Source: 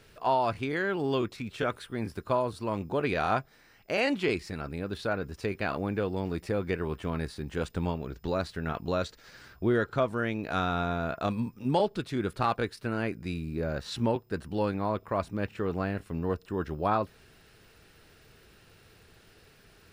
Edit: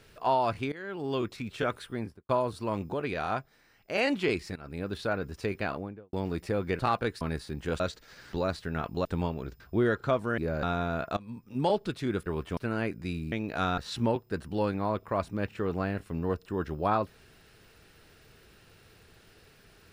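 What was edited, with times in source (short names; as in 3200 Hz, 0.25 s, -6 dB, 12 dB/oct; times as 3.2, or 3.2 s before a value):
0.72–1.33 fade in, from -17 dB
1.9–2.29 studio fade out
2.94–3.95 gain -4 dB
4.56–4.81 fade in, from -16.5 dB
5.56–6.13 studio fade out
6.79–7.1 swap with 12.36–12.78
7.69–8.24 swap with 8.96–9.49
10.27–10.73 swap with 13.53–13.78
11.27–11.85 fade in, from -21.5 dB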